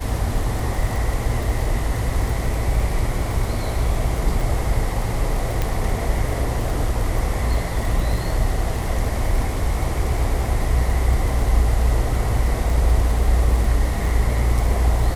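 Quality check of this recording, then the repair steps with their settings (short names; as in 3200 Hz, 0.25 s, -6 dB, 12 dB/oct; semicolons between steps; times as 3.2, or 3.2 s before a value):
crackle 32/s -25 dBFS
5.62 pop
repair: de-click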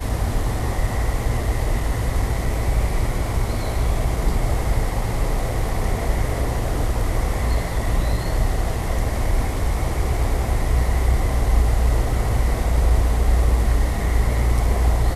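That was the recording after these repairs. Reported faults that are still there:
none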